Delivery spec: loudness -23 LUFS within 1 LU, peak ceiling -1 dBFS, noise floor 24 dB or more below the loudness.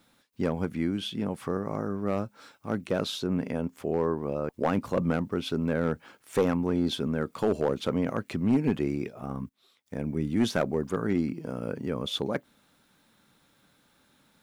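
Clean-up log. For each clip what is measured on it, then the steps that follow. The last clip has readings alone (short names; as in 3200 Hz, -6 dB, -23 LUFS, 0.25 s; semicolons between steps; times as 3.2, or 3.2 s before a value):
clipped 0.4%; flat tops at -17.0 dBFS; loudness -30.0 LUFS; peak -17.0 dBFS; loudness target -23.0 LUFS
-> clip repair -17 dBFS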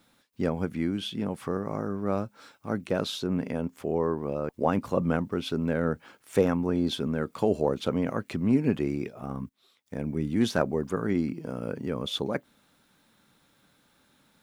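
clipped 0.0%; loudness -29.5 LUFS; peak -8.5 dBFS; loudness target -23.0 LUFS
-> gain +6.5 dB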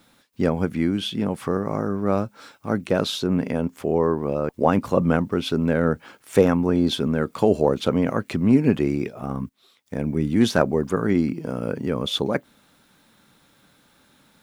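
loudness -23.0 LUFS; peak -2.0 dBFS; noise floor -60 dBFS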